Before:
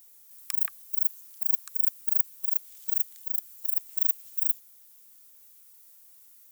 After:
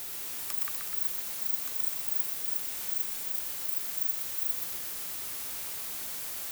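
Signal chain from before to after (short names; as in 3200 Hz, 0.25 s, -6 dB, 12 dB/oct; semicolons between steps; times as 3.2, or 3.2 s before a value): zero-crossing step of -25 dBFS; warbling echo 0.124 s, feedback 69%, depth 172 cents, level -4 dB; gain -8 dB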